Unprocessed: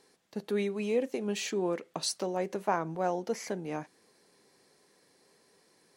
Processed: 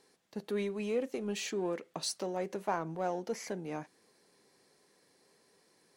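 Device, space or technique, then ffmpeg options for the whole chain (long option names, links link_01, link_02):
parallel distortion: -filter_complex "[0:a]asplit=2[link_01][link_02];[link_02]asoftclip=type=hard:threshold=-33dB,volume=-9.5dB[link_03];[link_01][link_03]amix=inputs=2:normalize=0,volume=-5dB"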